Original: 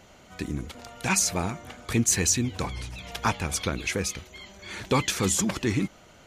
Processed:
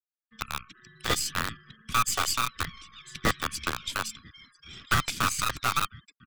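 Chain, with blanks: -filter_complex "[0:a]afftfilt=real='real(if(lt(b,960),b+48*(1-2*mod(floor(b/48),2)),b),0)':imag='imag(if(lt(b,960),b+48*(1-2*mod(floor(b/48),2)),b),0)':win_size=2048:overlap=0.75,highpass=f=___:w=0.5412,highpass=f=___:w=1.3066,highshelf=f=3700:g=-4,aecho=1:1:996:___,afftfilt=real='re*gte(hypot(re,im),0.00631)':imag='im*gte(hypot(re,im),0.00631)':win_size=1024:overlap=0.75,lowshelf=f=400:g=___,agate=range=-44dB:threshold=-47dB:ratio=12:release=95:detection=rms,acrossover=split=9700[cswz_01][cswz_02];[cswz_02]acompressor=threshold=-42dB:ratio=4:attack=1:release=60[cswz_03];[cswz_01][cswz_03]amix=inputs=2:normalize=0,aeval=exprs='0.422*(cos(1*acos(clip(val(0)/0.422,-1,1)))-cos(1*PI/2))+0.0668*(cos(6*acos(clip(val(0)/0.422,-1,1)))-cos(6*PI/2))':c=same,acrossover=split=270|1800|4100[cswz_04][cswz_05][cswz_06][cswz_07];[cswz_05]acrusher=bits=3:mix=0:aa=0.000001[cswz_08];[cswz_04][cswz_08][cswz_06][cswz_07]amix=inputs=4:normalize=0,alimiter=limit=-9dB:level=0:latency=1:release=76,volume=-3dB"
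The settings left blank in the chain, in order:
44, 44, 0.1, 7.5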